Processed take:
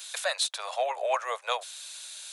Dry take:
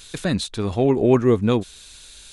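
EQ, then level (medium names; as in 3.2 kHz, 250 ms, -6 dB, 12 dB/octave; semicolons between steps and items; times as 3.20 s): steep high-pass 560 Hz 72 dB/octave; treble shelf 8 kHz +5.5 dB; 0.0 dB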